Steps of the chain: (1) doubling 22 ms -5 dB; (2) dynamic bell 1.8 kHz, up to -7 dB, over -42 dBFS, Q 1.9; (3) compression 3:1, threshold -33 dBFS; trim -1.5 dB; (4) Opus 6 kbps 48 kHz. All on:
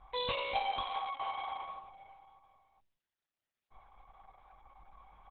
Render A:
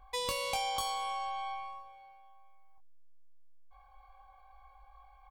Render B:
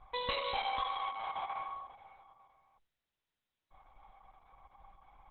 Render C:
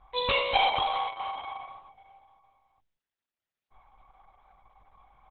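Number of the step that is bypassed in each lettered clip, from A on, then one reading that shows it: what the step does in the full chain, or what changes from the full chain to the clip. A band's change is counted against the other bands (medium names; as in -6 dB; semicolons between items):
4, crest factor change +2.5 dB; 1, momentary loudness spread change -6 LU; 3, mean gain reduction 2.0 dB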